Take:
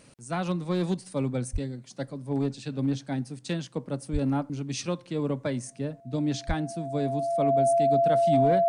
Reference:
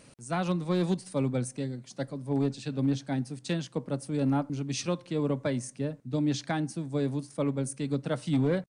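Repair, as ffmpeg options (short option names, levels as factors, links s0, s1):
-filter_complex "[0:a]bandreject=f=680:w=30,asplit=3[s0][s1][s2];[s0]afade=t=out:st=1.52:d=0.02[s3];[s1]highpass=f=140:w=0.5412,highpass=f=140:w=1.3066,afade=t=in:st=1.52:d=0.02,afade=t=out:st=1.64:d=0.02[s4];[s2]afade=t=in:st=1.64:d=0.02[s5];[s3][s4][s5]amix=inputs=3:normalize=0,asplit=3[s6][s7][s8];[s6]afade=t=out:st=4.12:d=0.02[s9];[s7]highpass=f=140:w=0.5412,highpass=f=140:w=1.3066,afade=t=in:st=4.12:d=0.02,afade=t=out:st=4.24:d=0.02[s10];[s8]afade=t=in:st=4.24:d=0.02[s11];[s9][s10][s11]amix=inputs=3:normalize=0,asplit=3[s12][s13][s14];[s12]afade=t=out:st=6.47:d=0.02[s15];[s13]highpass=f=140:w=0.5412,highpass=f=140:w=1.3066,afade=t=in:st=6.47:d=0.02,afade=t=out:st=6.59:d=0.02[s16];[s14]afade=t=in:st=6.59:d=0.02[s17];[s15][s16][s17]amix=inputs=3:normalize=0"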